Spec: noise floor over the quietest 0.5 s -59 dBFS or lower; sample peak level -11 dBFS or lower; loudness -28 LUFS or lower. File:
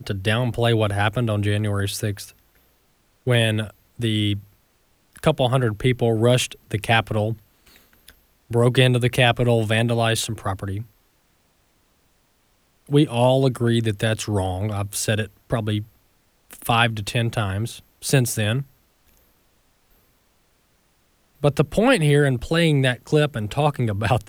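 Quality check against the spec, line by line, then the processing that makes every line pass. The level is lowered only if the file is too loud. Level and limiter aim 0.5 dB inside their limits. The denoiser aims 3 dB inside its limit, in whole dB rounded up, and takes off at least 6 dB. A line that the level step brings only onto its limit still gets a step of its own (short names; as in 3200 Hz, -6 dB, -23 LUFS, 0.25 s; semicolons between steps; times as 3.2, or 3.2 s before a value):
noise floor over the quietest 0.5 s -63 dBFS: OK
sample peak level -3.5 dBFS: fail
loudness -21.0 LUFS: fail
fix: gain -7.5 dB; limiter -11.5 dBFS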